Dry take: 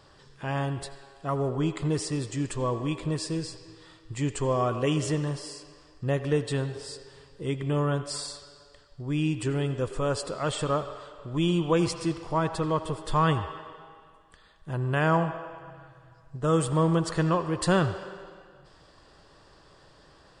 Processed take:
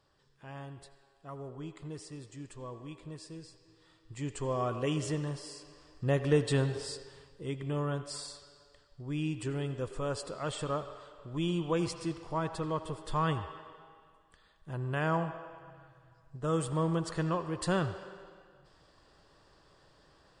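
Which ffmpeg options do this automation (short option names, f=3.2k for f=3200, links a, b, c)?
-af "volume=1dB,afade=t=in:st=3.6:d=1.09:silence=0.334965,afade=t=in:st=5.44:d=1.3:silence=0.446684,afade=t=out:st=6.74:d=0.68:silence=0.398107"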